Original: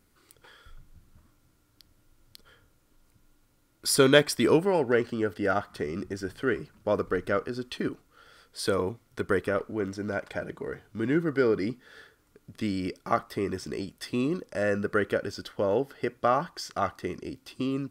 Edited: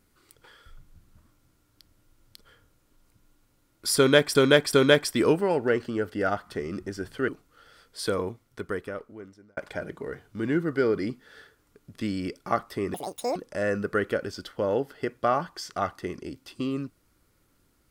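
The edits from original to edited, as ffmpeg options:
ffmpeg -i in.wav -filter_complex "[0:a]asplit=7[link_01][link_02][link_03][link_04][link_05][link_06][link_07];[link_01]atrim=end=4.352[link_08];[link_02]atrim=start=3.968:end=4.352[link_09];[link_03]atrim=start=3.968:end=6.522[link_10];[link_04]atrim=start=7.878:end=10.17,asetpts=PTS-STARTPTS,afade=type=out:start_time=0.722:duration=1.57[link_11];[link_05]atrim=start=10.17:end=13.544,asetpts=PTS-STARTPTS,afade=type=in:duration=0.004:curve=hsin[link_12];[link_06]atrim=start=13.54:end=14.36,asetpts=PTS-STARTPTS,asetrate=86436,aresample=44100[link_13];[link_07]atrim=start=14.356[link_14];[link_08][link_09]acrossfade=duration=0.004:curve1=hsin:curve2=hsin[link_15];[link_15][link_10]acrossfade=duration=0.004:curve1=hsin:curve2=hsin[link_16];[link_11][link_12]concat=n=2:v=0:a=1[link_17];[link_16][link_17]acrossfade=duration=0.004:curve1=hsin:curve2=hsin[link_18];[link_18][link_13]acrossfade=duration=0.004:curve1=hsin:curve2=hsin[link_19];[link_19][link_14]acrossfade=duration=0.004:curve1=hsin:curve2=hsin" out.wav

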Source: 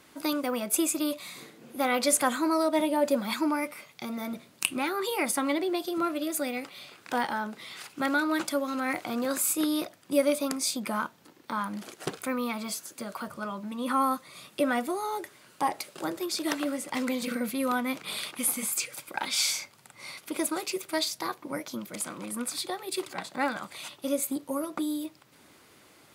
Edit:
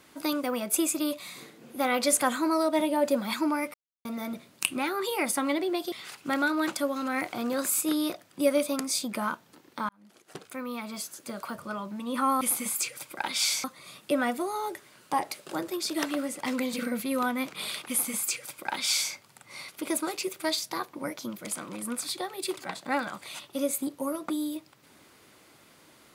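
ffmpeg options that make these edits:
ffmpeg -i in.wav -filter_complex "[0:a]asplit=7[link_01][link_02][link_03][link_04][link_05][link_06][link_07];[link_01]atrim=end=3.74,asetpts=PTS-STARTPTS,afade=type=out:start_time=3.736:duration=0.004:curve=hsin[link_08];[link_02]atrim=start=3.74:end=4.05,asetpts=PTS-STARTPTS,volume=0[link_09];[link_03]atrim=start=4.05:end=5.922,asetpts=PTS-STARTPTS,afade=type=in:duration=0.004:curve=hsin[link_10];[link_04]atrim=start=7.638:end=11.61,asetpts=PTS-STARTPTS,afade=type=out:start_time=3.968:duration=0.004:curve=hsin[link_11];[link_05]atrim=start=11.61:end=14.132,asetpts=PTS-STARTPTS,afade=type=in:duration=1.42[link_12];[link_06]atrim=start=18.378:end=19.612[link_13];[link_07]atrim=start=14.128[link_14];[link_08][link_09][link_10]concat=n=3:v=0:a=1[link_15];[link_11][link_12]concat=n=2:v=0:a=1[link_16];[link_15][link_16]acrossfade=duration=0.004:curve1=hsin:curve2=hsin[link_17];[link_17][link_13]acrossfade=duration=0.004:curve1=hsin:curve2=hsin[link_18];[link_18][link_14]acrossfade=duration=0.004:curve1=hsin:curve2=hsin" out.wav

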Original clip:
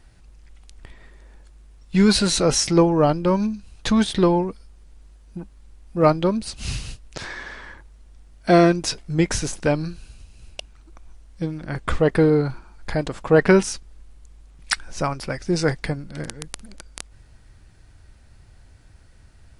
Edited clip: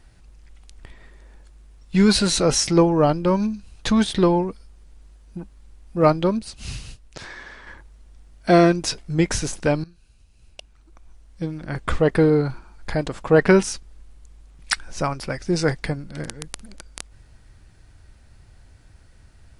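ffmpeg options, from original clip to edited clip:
ffmpeg -i in.wav -filter_complex "[0:a]asplit=4[link_01][link_02][link_03][link_04];[link_01]atrim=end=6.392[link_05];[link_02]atrim=start=6.388:end=7.672,asetpts=PTS-STARTPTS,volume=-4.5dB[link_06];[link_03]atrim=start=7.668:end=9.84,asetpts=PTS-STARTPTS,afade=type=out:start_time=2.168:duration=0.004:curve=hsin:silence=0.112202[link_07];[link_04]atrim=start=9.84,asetpts=PTS-STARTPTS,afade=type=in:duration=1.89:silence=0.112202[link_08];[link_05][link_06]acrossfade=duration=0.004:curve1=hsin:curve2=hsin[link_09];[link_07][link_08]concat=n=2:v=0:a=1[link_10];[link_09][link_10]acrossfade=duration=0.004:curve1=hsin:curve2=hsin" out.wav

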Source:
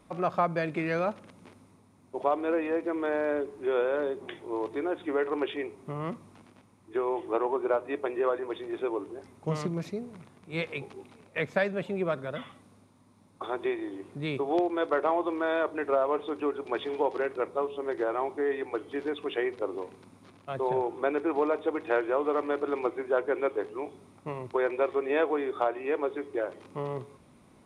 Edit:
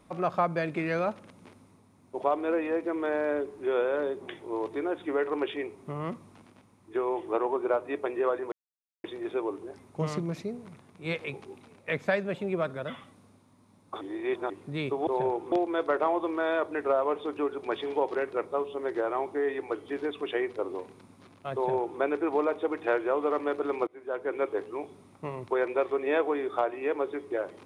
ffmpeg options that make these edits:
ffmpeg -i in.wav -filter_complex "[0:a]asplit=7[link_01][link_02][link_03][link_04][link_05][link_06][link_07];[link_01]atrim=end=8.52,asetpts=PTS-STARTPTS,afade=type=out:start_time=8.516:duration=0.004:curve=hsin,apad=pad_dur=0.52[link_08];[link_02]atrim=start=8.52:end=13.492,asetpts=PTS-STARTPTS,afade=type=in:duration=0.004:curve=hsin[link_09];[link_03]atrim=start=13.488:end=13.982,asetpts=PTS-STARTPTS,areverse[link_10];[link_04]atrim=start=13.978:end=14.552[link_11];[link_05]atrim=start=20.578:end=21.032[link_12];[link_06]atrim=start=14.548:end=22.9,asetpts=PTS-STARTPTS,afade=type=out:start_time=8.348:duration=0.004:curve=hsin:silence=0.0668344[link_13];[link_07]atrim=start=22.9,asetpts=PTS-STARTPTS,afade=type=in:duration=0.6:silence=0.0668344[link_14];[link_08][link_09]concat=n=2:v=0:a=1[link_15];[link_15][link_10]acrossfade=duration=0.004:curve1=hsin:curve2=hsin[link_16];[link_16][link_11]acrossfade=duration=0.004:curve1=hsin:curve2=hsin[link_17];[link_17][link_12]acrossfade=duration=0.004:curve1=hsin:curve2=hsin[link_18];[link_13][link_14]concat=n=2:v=0:a=1[link_19];[link_18][link_19]acrossfade=duration=0.004:curve1=hsin:curve2=hsin" out.wav

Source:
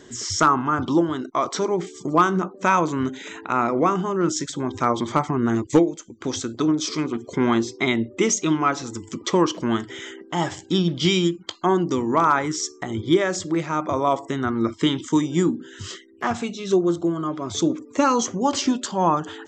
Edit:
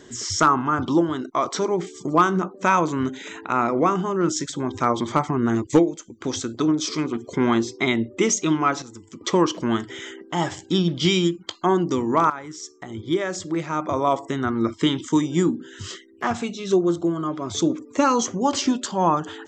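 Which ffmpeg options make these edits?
ffmpeg -i in.wav -filter_complex "[0:a]asplit=4[link_01][link_02][link_03][link_04];[link_01]atrim=end=8.822[link_05];[link_02]atrim=start=8.818:end=9.212,asetpts=PTS-STARTPTS,volume=-9dB[link_06];[link_03]atrim=start=9.208:end=12.3,asetpts=PTS-STARTPTS,afade=type=out:start_time=3.088:duration=0.004:curve=hsin:silence=0.188365[link_07];[link_04]atrim=start=12.3,asetpts=PTS-STARTPTS,afade=type=in:duration=1.74:silence=0.188365[link_08];[link_05][link_06]acrossfade=duration=0.004:curve1=hsin:curve2=hsin[link_09];[link_07][link_08]concat=n=2:v=0:a=1[link_10];[link_09][link_10]acrossfade=duration=0.004:curve1=hsin:curve2=hsin" out.wav

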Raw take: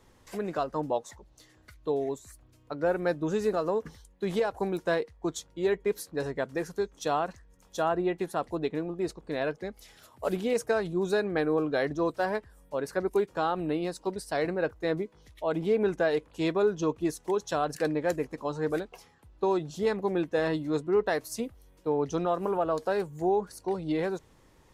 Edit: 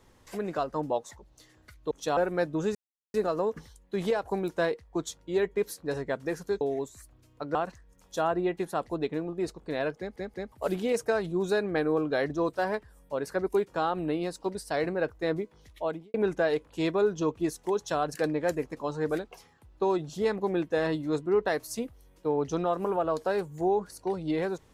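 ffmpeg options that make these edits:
ffmpeg -i in.wav -filter_complex "[0:a]asplit=10[link_01][link_02][link_03][link_04][link_05][link_06][link_07][link_08][link_09][link_10];[link_01]atrim=end=1.912[link_11];[link_02]atrim=start=6.898:end=7.162[link_12];[link_03]atrim=start=2.848:end=3.43,asetpts=PTS-STARTPTS,afade=type=out:start_time=0.578:duration=0.004:curve=hsin,apad=pad_dur=0.39[link_13];[link_04]atrim=start=3.43:end=6.902,asetpts=PTS-STARTPTS,afade=type=in:duration=0.004:curve=hsin[link_14];[link_05]atrim=start=1.908:end=2.852[link_15];[link_06]atrim=start=7.158:end=9.772[link_16];[link_07]atrim=start=9.588:end=9.772[link_17];[link_08]atrim=start=9.588:end=9.772[link_18];[link_09]atrim=start=10.128:end=15.75,asetpts=PTS-STARTPTS,afade=type=out:start_time=5.332:duration=0.29:curve=qua[link_19];[link_10]atrim=start=15.75,asetpts=PTS-STARTPTS,afade=type=in:duration=0.004:curve=hsin[link_20];[link_11][link_12]acrossfade=duration=0.004:curve1=hsin:curve2=hsin[link_21];[link_13][link_14]concat=n=2:v=0:a=1[link_22];[link_21][link_22]acrossfade=duration=0.004:curve1=hsin:curve2=hsin[link_23];[link_23][link_15]acrossfade=duration=0.004:curve1=hsin:curve2=hsin[link_24];[link_24][link_16]acrossfade=duration=0.004:curve1=hsin:curve2=hsin[link_25];[link_25][link_17]acrossfade=duration=0.004:curve1=hsin:curve2=hsin[link_26];[link_26][link_18]acrossfade=duration=0.004:curve1=hsin:curve2=hsin[link_27];[link_19][link_20]concat=n=2:v=0:a=1[link_28];[link_27][link_28]acrossfade=duration=0.004:curve1=hsin:curve2=hsin" out.wav

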